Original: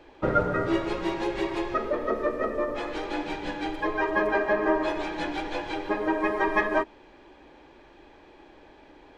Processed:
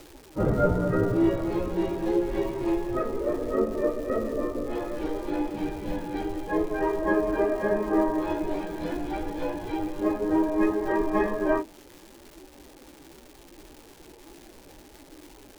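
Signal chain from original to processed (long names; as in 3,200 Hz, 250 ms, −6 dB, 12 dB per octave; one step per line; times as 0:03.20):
tilt shelving filter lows +8.5 dB, about 840 Hz
time stretch by phase vocoder 1.7×
surface crackle 510 per second −39 dBFS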